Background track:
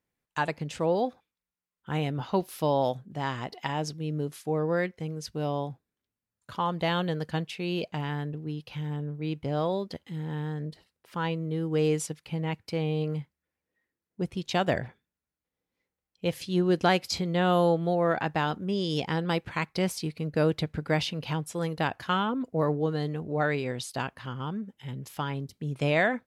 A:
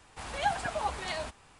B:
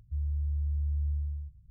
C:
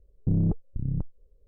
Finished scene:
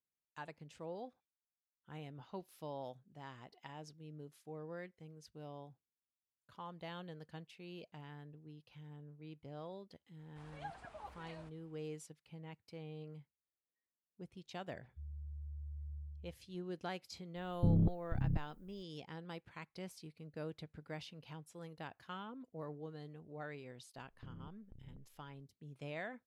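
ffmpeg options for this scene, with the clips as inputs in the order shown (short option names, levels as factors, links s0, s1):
-filter_complex "[3:a]asplit=2[s0][s1];[0:a]volume=0.1[s2];[1:a]equalizer=f=9200:w=0.36:g=-10[s3];[2:a]highpass=65[s4];[s0]aemphasis=mode=production:type=75fm[s5];[s1]acompressor=threshold=0.0178:ratio=6:attack=3.2:release=140:knee=1:detection=peak[s6];[s3]atrim=end=1.59,asetpts=PTS-STARTPTS,volume=0.126,afade=t=in:d=0.004:c=hsin,afade=t=out:st=1.586:d=0.004:c=hsin,adelay=10190[s7];[s4]atrim=end=1.7,asetpts=PTS-STARTPTS,volume=0.2,afade=t=in:d=0.004:c=hsin,afade=t=out:st=1.696:d=0.004:c=hsin,adelay=14850[s8];[s5]atrim=end=1.47,asetpts=PTS-STARTPTS,volume=0.531,afade=t=in:d=0.004:c=hsin,afade=t=out:st=1.466:d=0.004:c=hsin,adelay=17360[s9];[s6]atrim=end=1.47,asetpts=PTS-STARTPTS,volume=0.178,afade=t=in:d=0.004:c=hsin,afade=t=out:st=1.466:d=0.004:c=hsin,adelay=23960[s10];[s2][s7][s8][s9][s10]amix=inputs=5:normalize=0"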